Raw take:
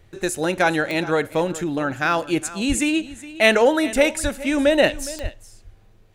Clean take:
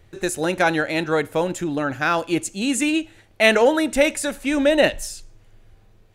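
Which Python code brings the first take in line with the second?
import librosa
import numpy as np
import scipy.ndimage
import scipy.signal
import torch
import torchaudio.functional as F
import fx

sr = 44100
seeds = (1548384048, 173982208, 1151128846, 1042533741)

y = fx.fix_declick_ar(x, sr, threshold=10.0)
y = fx.highpass(y, sr, hz=140.0, slope=24, at=(2.68, 2.8), fade=0.02)
y = fx.highpass(y, sr, hz=140.0, slope=24, at=(4.22, 4.34), fade=0.02)
y = fx.highpass(y, sr, hz=140.0, slope=24, at=(5.22, 5.34), fade=0.02)
y = fx.fix_echo_inverse(y, sr, delay_ms=414, level_db=-17.0)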